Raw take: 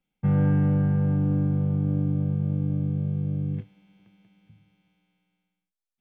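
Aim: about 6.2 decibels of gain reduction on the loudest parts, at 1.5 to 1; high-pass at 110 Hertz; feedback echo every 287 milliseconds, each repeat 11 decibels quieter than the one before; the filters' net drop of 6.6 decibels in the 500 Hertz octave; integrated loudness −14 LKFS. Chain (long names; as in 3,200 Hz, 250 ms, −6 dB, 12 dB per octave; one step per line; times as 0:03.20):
high-pass filter 110 Hz
parametric band 500 Hz −7.5 dB
downward compressor 1.5 to 1, threshold −38 dBFS
repeating echo 287 ms, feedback 28%, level −11 dB
level +18 dB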